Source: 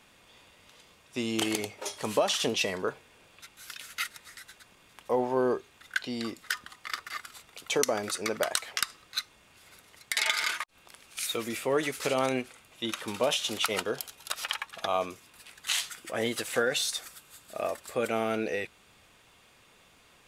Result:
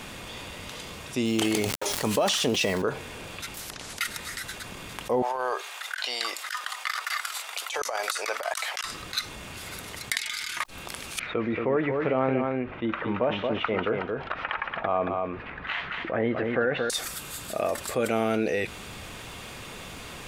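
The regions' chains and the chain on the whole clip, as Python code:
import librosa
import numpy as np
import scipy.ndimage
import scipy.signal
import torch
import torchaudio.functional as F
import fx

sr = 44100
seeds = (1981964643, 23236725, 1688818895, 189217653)

y = fx.chain(x, sr, fx.sample_gate(floor_db=-42.0),
    fx.sustainer(db_per_s=54.0), at=(1.25, 2.82))
y = fx.chain(y, sr, fx.env_lowpass_down(base_hz=940.0, full_db=-40.0),
    fx.peak_eq(hz=2000.0, db=-8.0, octaves=1.5),
    fx.spectral_comp(ratio=10.0), at=(3.54, 4.01))
y = fx.chain(y, sr, fx.highpass(hz=670.0, slope=24),
    fx.over_compress(threshold_db=-36.0, ratio=-0.5), at=(5.22, 8.84))
y = fx.chain(y, sr, fx.tone_stack(knobs='6-0-2'),
    fx.sustainer(db_per_s=25.0), at=(10.17, 10.57))
y = fx.chain(y, sr, fx.lowpass(hz=2100.0, slope=24),
    fx.echo_single(ms=227, db=-7.0), at=(11.19, 16.9))
y = fx.low_shelf(y, sr, hz=340.0, db=6.0)
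y = fx.env_flatten(y, sr, amount_pct=50)
y = y * 10.0 ** (-2.0 / 20.0)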